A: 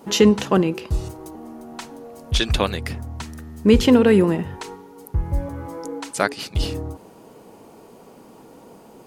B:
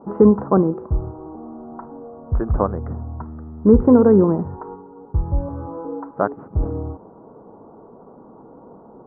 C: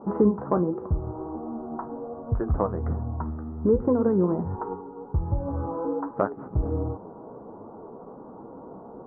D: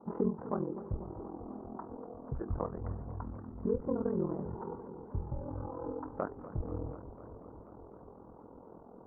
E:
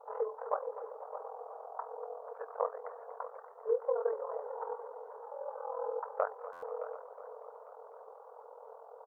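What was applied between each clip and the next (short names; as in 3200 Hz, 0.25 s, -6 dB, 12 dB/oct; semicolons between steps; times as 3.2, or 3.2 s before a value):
steep low-pass 1300 Hz 48 dB/oct; gain +2 dB
compressor 2.5:1, threshold -24 dBFS, peak gain reduction 12 dB; tone controls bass -1 dB, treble -13 dB; flange 1.3 Hz, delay 8.2 ms, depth 9.1 ms, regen +49%; gain +5.5 dB
ring modulator 21 Hz; warbling echo 0.245 s, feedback 77%, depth 161 cents, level -14.5 dB; gain -8.5 dB
brick-wall FIR high-pass 430 Hz; echo 0.616 s -13.5 dB; stuck buffer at 6.52, samples 512, times 8; gain +5 dB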